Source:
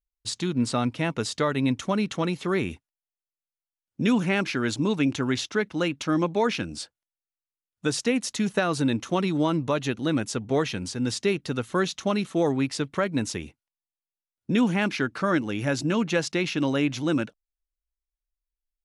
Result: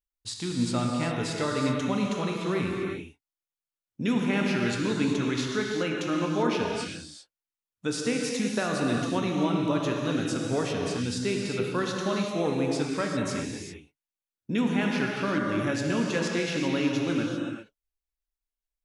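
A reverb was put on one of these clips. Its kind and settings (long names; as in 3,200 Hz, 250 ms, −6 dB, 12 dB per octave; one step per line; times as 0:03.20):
reverb whose tail is shaped and stops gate 420 ms flat, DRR −1 dB
level −5.5 dB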